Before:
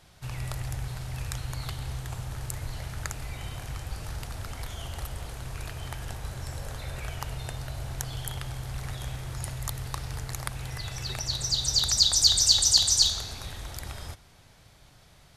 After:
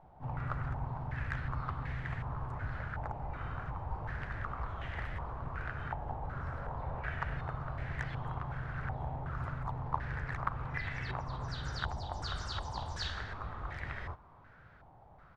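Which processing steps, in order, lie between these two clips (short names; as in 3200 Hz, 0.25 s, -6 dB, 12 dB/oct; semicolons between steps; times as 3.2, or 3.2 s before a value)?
harmoniser -3 st -10 dB, +3 st -6 dB, +12 st -17 dB; stepped low-pass 2.7 Hz 850–1900 Hz; gain -5 dB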